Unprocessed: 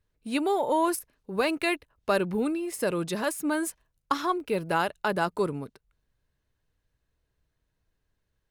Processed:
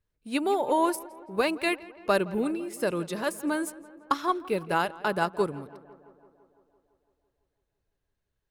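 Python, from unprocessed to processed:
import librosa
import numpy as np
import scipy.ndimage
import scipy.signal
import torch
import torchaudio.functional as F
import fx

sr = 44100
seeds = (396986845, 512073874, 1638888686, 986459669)

y = fx.echo_tape(x, sr, ms=168, feedback_pct=74, wet_db=-13.5, lp_hz=2400.0, drive_db=15.0, wow_cents=11)
y = fx.upward_expand(y, sr, threshold_db=-34.0, expansion=1.5)
y = y * 10.0 ** (1.5 / 20.0)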